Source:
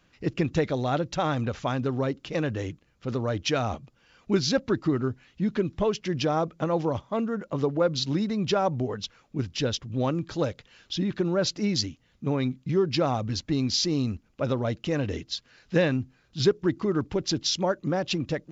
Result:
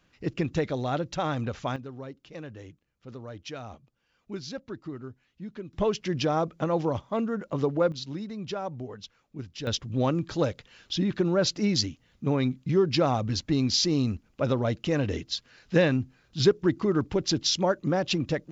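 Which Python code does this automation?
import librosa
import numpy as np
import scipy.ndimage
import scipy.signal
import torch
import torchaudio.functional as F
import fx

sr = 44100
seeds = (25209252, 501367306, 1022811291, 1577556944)

y = fx.gain(x, sr, db=fx.steps((0.0, -2.5), (1.76, -13.0), (5.73, -0.5), (7.92, -9.0), (9.67, 1.0)))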